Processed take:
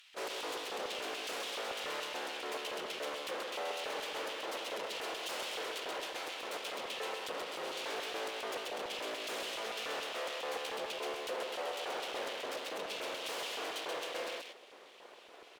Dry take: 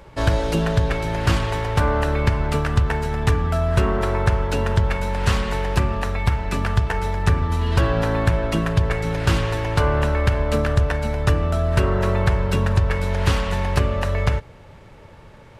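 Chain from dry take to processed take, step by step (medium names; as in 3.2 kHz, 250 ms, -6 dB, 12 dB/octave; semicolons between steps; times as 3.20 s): high-pass 120 Hz 12 dB/octave; full-wave rectifier; valve stage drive 21 dB, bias 0.6; LFO high-pass square 3.5 Hz 470–3000 Hz; delay 131 ms -4 dB; trim -2.5 dB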